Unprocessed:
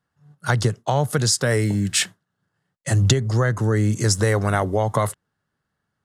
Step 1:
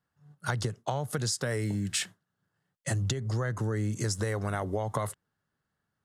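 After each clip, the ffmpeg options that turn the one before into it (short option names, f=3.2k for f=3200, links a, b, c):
-af "acompressor=threshold=-22dB:ratio=6,volume=-5dB"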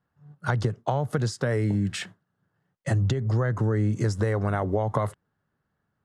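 -af "lowpass=f=1.4k:p=1,volume=6.5dB"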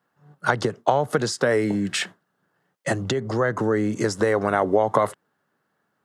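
-af "highpass=270,volume=8dB"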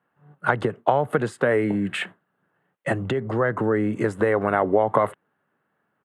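-af "firequalizer=gain_entry='entry(2700,0);entry(5400,-24);entry(8400,-9)':delay=0.05:min_phase=1"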